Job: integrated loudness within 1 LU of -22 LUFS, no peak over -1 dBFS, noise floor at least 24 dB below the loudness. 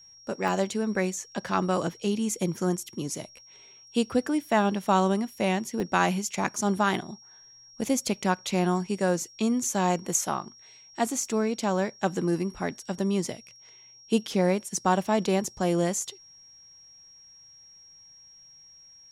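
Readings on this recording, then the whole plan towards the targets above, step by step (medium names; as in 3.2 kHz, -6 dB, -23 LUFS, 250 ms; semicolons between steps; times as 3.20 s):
dropouts 2; longest dropout 1.2 ms; steady tone 5.6 kHz; tone level -50 dBFS; loudness -27.5 LUFS; peak level -8.0 dBFS; loudness target -22.0 LUFS
-> interpolate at 0.48/5.80 s, 1.2 ms; band-stop 5.6 kHz, Q 30; trim +5.5 dB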